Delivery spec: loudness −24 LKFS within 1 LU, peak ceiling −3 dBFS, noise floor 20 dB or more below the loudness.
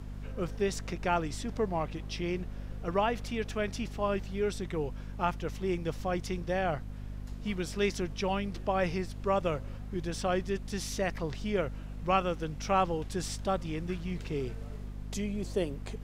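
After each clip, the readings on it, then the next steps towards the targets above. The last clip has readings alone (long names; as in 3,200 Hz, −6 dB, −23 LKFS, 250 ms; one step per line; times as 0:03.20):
mains hum 50 Hz; hum harmonics up to 250 Hz; level of the hum −38 dBFS; background noise floor −42 dBFS; target noise floor −54 dBFS; integrated loudness −33.5 LKFS; sample peak −14.0 dBFS; target loudness −24.0 LKFS
→ hum removal 50 Hz, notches 5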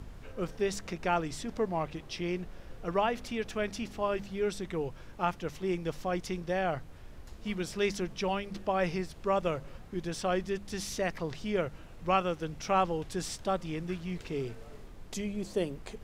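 mains hum none found; background noise floor −49 dBFS; target noise floor −54 dBFS
→ noise reduction from a noise print 6 dB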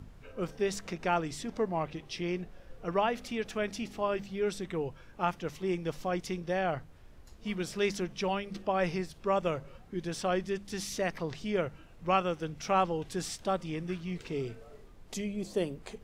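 background noise floor −54 dBFS; integrated loudness −34.0 LKFS; sample peak −14.5 dBFS; target loudness −24.0 LKFS
→ level +10 dB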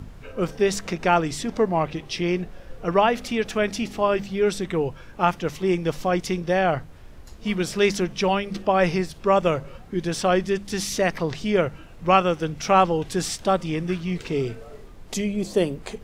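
integrated loudness −24.0 LKFS; sample peak −4.5 dBFS; background noise floor −44 dBFS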